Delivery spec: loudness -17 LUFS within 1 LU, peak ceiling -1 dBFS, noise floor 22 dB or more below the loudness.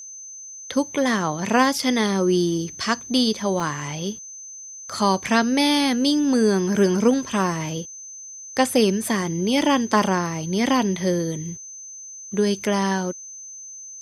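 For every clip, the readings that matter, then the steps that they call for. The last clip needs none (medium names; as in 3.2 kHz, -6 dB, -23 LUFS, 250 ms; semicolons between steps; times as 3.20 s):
dropouts 2; longest dropout 1.7 ms; steady tone 6.2 kHz; tone level -36 dBFS; loudness -21.5 LUFS; peak level -3.0 dBFS; loudness target -17.0 LUFS
-> interpolate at 3.60/9.62 s, 1.7 ms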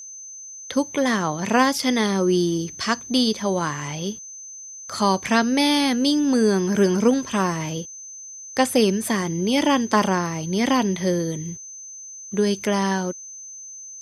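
dropouts 0; steady tone 6.2 kHz; tone level -36 dBFS
-> band-stop 6.2 kHz, Q 30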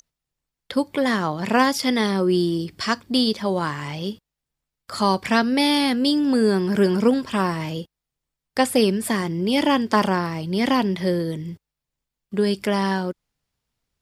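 steady tone not found; loudness -21.5 LUFS; peak level -3.0 dBFS; loudness target -17.0 LUFS
-> trim +4.5 dB; peak limiter -1 dBFS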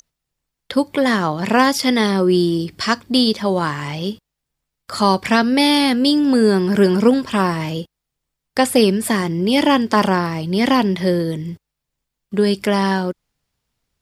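loudness -17.0 LUFS; peak level -1.0 dBFS; noise floor -81 dBFS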